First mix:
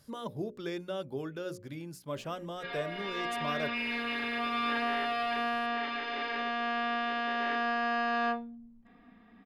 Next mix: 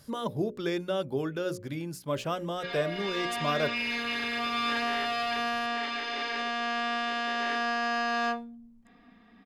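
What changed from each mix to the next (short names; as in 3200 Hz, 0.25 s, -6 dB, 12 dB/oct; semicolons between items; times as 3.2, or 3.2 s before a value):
speech +6.5 dB; background: remove air absorption 230 m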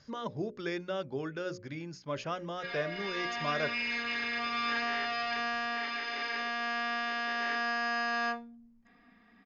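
master: add rippled Chebyshev low-pass 6800 Hz, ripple 6 dB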